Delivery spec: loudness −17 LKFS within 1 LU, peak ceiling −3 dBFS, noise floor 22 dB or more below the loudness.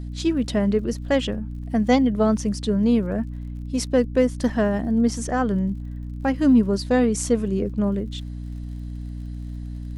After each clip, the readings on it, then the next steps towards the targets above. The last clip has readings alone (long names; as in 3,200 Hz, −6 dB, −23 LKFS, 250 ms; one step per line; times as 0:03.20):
crackle rate 54 per second; mains hum 60 Hz; hum harmonics up to 300 Hz; level of the hum −30 dBFS; integrated loudness −22.5 LKFS; sample peak −4.0 dBFS; target loudness −17.0 LKFS
→ click removal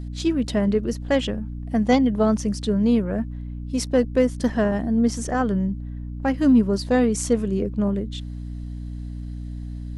crackle rate 0.20 per second; mains hum 60 Hz; hum harmonics up to 300 Hz; level of the hum −30 dBFS
→ mains-hum notches 60/120/180/240/300 Hz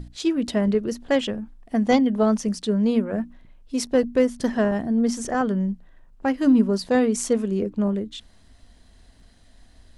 mains hum none found; integrated loudness −23.0 LKFS; sample peak −5.5 dBFS; target loudness −17.0 LKFS
→ level +6 dB
brickwall limiter −3 dBFS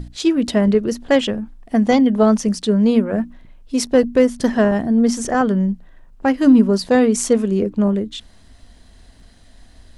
integrated loudness −17.0 LKFS; sample peak −3.0 dBFS; background noise floor −47 dBFS